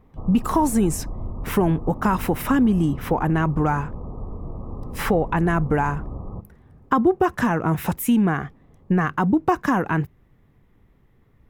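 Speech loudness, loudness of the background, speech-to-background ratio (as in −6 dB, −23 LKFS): −22.0 LKFS, −35.5 LKFS, 13.5 dB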